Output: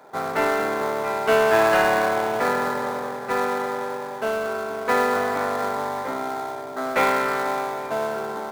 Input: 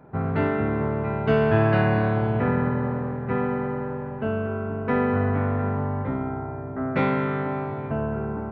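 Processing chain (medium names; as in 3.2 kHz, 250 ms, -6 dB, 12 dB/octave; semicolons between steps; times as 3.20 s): high-pass 630 Hz 12 dB/octave; in parallel at -9 dB: sample-rate reducer 2.8 kHz, jitter 20%; on the sum: trim +6.5 dB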